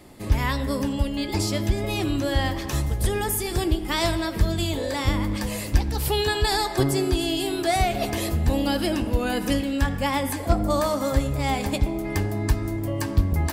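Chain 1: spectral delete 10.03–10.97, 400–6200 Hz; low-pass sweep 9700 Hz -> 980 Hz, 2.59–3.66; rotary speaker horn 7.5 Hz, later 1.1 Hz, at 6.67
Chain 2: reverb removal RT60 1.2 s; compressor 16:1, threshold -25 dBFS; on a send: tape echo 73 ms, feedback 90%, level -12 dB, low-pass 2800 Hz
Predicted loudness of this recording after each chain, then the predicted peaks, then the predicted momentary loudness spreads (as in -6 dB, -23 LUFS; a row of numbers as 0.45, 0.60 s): -26.5, -30.5 LUFS; -9.0, -12.5 dBFS; 4, 3 LU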